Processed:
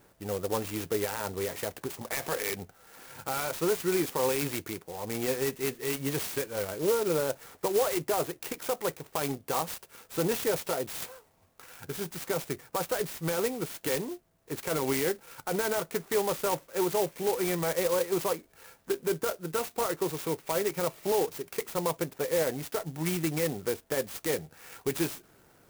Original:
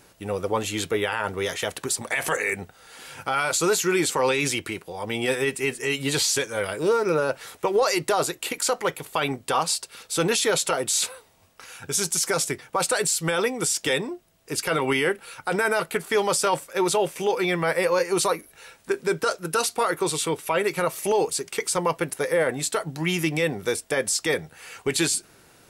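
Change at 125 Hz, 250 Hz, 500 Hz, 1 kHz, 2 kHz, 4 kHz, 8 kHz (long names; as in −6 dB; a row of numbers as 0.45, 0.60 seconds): −4.5, −4.5, −5.0, −8.0, −11.5, −11.0, −11.0 decibels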